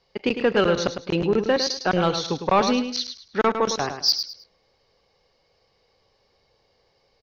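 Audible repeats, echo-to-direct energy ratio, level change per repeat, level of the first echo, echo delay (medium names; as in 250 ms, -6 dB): 3, -8.0 dB, -11.0 dB, -8.5 dB, 105 ms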